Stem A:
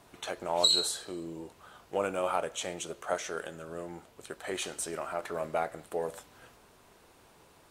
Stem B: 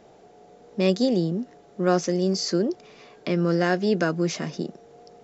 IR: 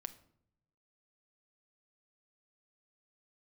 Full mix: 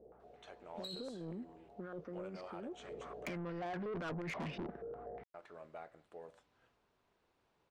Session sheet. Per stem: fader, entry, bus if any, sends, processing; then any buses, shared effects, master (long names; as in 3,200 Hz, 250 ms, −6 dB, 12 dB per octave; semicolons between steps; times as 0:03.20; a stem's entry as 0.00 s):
−18.0 dB, 0.20 s, muted 0:03.37–0:05.34, no send, no processing
0:02.71 −17.5 dB → 0:02.93 −7 dB, 0.00 s, no send, compressor whose output falls as the input rises −27 dBFS, ratio −1; mains hum 60 Hz, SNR 27 dB; low-pass on a step sequencer 8.3 Hz 480–2,600 Hz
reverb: not used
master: low-pass filter 4,600 Hz 12 dB per octave; soft clipping −34.5 dBFS, distortion −7 dB; downward compressor 2 to 1, threshold −42 dBFS, peak gain reduction 3.5 dB